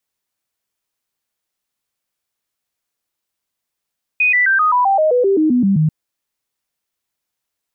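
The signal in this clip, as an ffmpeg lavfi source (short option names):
-f lavfi -i "aevalsrc='0.299*clip(min(mod(t,0.13),0.13-mod(t,0.13))/0.005,0,1)*sin(2*PI*2490*pow(2,-floor(t/0.13)/3)*mod(t,0.13))':d=1.69:s=44100"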